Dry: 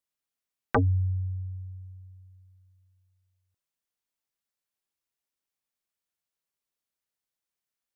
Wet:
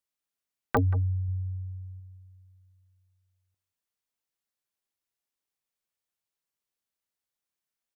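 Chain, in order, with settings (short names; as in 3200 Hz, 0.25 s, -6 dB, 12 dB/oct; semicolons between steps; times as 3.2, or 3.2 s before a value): 1.28–2 low shelf 190 Hz +3.5 dB; outdoor echo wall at 31 m, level -17 dB; pops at 0.77, -15 dBFS; gain -1 dB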